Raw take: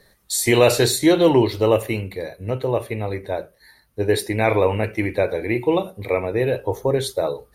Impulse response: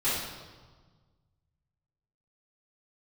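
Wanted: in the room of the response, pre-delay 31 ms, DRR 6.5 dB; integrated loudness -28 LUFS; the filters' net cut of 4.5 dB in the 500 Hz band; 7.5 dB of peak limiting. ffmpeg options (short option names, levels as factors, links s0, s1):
-filter_complex "[0:a]equalizer=f=500:t=o:g=-5.5,alimiter=limit=0.237:level=0:latency=1,asplit=2[s0][s1];[1:a]atrim=start_sample=2205,adelay=31[s2];[s1][s2]afir=irnorm=-1:irlink=0,volume=0.141[s3];[s0][s3]amix=inputs=2:normalize=0,volume=0.631"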